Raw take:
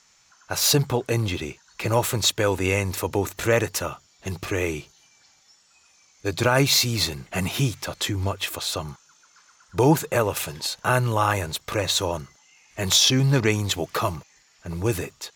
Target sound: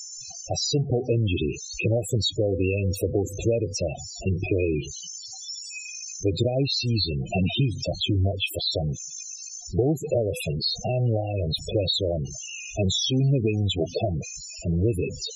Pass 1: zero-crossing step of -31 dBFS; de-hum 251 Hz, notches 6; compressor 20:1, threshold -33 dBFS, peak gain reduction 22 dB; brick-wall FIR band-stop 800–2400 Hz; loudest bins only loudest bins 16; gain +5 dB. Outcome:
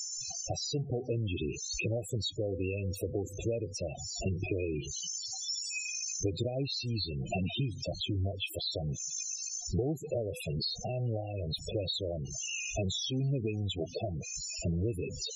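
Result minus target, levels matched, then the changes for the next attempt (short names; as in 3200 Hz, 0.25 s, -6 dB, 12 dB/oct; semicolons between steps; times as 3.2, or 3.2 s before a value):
compressor: peak gain reduction +10 dB
change: compressor 20:1, threshold -22.5 dBFS, peak gain reduction 12 dB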